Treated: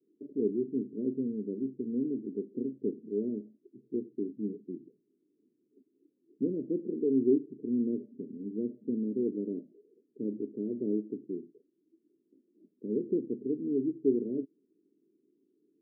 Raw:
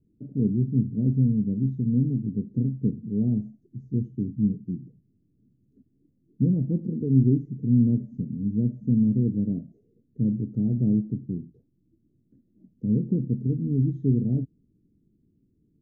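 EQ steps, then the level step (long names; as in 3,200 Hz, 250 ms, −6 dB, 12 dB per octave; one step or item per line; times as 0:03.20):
four-pole ladder high-pass 280 Hz, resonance 50%
elliptic low-pass filter 610 Hz, stop band 40 dB
parametric band 410 Hz +9.5 dB 0.41 octaves
+2.0 dB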